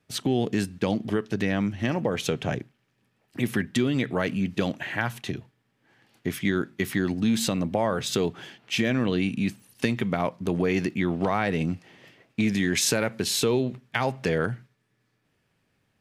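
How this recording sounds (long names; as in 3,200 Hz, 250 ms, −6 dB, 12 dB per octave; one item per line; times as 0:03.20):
background noise floor −72 dBFS
spectral slope −5.0 dB per octave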